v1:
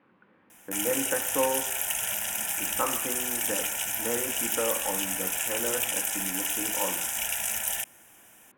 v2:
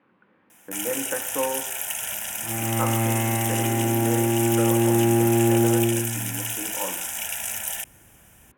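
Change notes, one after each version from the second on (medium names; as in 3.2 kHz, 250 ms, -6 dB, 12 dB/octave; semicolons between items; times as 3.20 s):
second sound: unmuted; master: add high-pass 56 Hz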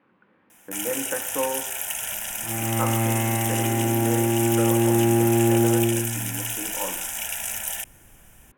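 master: remove high-pass 56 Hz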